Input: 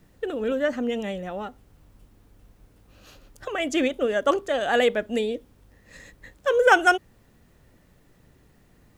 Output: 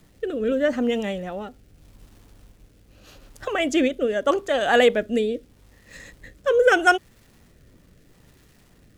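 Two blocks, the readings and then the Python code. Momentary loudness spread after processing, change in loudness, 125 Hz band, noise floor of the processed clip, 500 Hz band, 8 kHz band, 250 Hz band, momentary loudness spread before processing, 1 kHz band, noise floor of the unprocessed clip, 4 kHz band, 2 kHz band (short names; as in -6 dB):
15 LU, +2.0 dB, n/a, -56 dBFS, +2.5 dB, +1.5 dB, +3.5 dB, 15 LU, 0.0 dB, -59 dBFS, +2.0 dB, +1.0 dB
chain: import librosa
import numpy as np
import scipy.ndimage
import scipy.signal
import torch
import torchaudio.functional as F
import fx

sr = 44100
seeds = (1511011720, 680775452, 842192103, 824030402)

y = fx.dmg_crackle(x, sr, seeds[0], per_s=520.0, level_db=-51.0)
y = fx.rotary(y, sr, hz=0.8)
y = F.gain(torch.from_numpy(y), 4.5).numpy()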